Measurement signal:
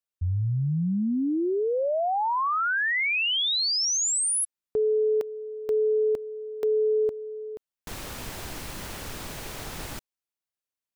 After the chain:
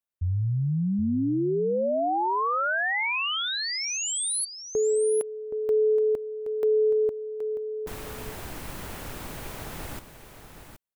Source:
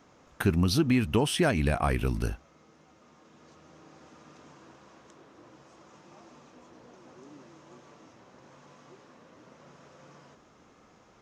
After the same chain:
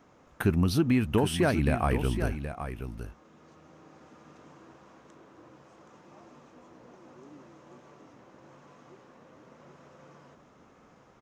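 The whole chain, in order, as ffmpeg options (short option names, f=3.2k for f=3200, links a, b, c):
-filter_complex "[0:a]equalizer=f=5.1k:w=0.67:g=-6,asplit=2[a][b];[b]aecho=0:1:773:0.335[c];[a][c]amix=inputs=2:normalize=0"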